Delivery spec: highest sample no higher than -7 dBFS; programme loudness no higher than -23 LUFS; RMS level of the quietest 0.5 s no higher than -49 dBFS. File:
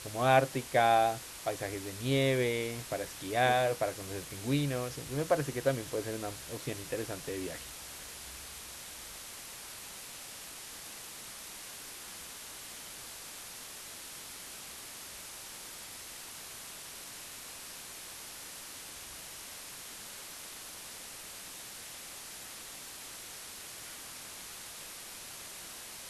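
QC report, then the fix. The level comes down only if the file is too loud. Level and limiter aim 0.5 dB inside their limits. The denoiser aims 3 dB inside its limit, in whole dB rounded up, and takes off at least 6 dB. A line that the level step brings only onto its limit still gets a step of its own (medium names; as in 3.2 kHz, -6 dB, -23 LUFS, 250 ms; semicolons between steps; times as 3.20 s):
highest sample -12.0 dBFS: pass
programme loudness -36.5 LUFS: pass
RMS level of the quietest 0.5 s -46 dBFS: fail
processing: noise reduction 6 dB, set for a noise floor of -46 dBFS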